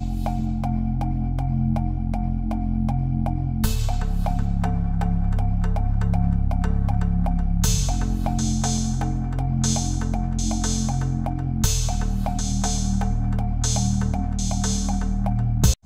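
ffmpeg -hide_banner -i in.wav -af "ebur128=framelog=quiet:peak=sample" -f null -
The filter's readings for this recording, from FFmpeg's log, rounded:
Integrated loudness:
  I:         -24.0 LUFS
  Threshold: -34.0 LUFS
Loudness range:
  LRA:         1.6 LU
  Threshold: -44.0 LUFS
  LRA low:   -24.8 LUFS
  LRA high:  -23.2 LUFS
Sample peak:
  Peak:       -4.5 dBFS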